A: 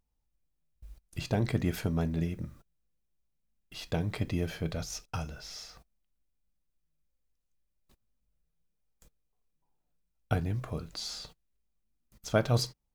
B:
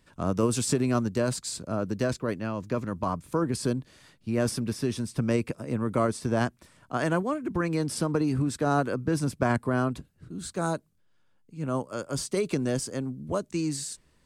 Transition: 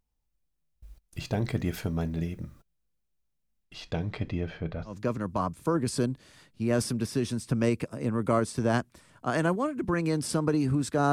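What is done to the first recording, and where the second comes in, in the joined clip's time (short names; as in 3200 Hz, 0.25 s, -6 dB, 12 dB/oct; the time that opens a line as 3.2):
A
3.64–4.98 LPF 8100 Hz -> 1600 Hz
4.91 switch to B from 2.58 s, crossfade 0.14 s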